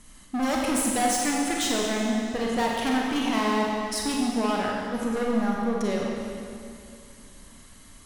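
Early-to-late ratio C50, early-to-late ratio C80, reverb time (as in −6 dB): −1.0 dB, 0.5 dB, 2.5 s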